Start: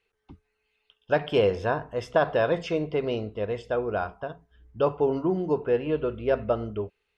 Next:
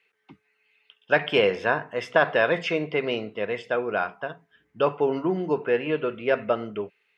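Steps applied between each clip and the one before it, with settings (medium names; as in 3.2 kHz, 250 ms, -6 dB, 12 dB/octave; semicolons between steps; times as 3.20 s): high-pass 140 Hz 24 dB/octave; peaking EQ 2.1 kHz +12 dB 1.2 oct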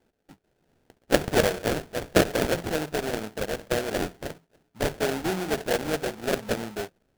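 in parallel at -3 dB: level held to a coarse grid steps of 18 dB; on the sum: sample-rate reducer 1.1 kHz, jitter 20%; trim -4 dB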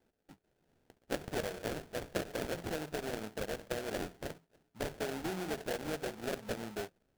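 compression 5:1, threshold -28 dBFS, peak gain reduction 13.5 dB; trim -6 dB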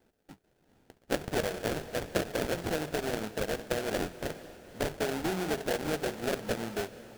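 echo that smears into a reverb 477 ms, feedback 40%, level -15.5 dB; trim +6 dB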